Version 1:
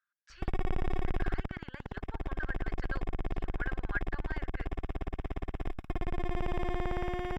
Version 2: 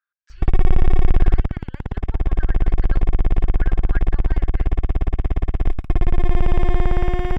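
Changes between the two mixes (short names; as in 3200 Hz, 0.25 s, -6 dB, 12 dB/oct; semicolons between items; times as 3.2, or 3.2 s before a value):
background +8.5 dB; master: add low shelf 140 Hz +11 dB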